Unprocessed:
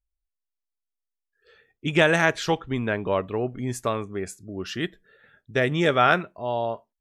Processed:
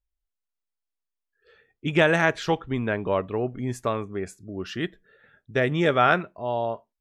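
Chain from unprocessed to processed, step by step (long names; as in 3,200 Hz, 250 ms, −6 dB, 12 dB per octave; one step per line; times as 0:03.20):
high-shelf EQ 4,300 Hz −8 dB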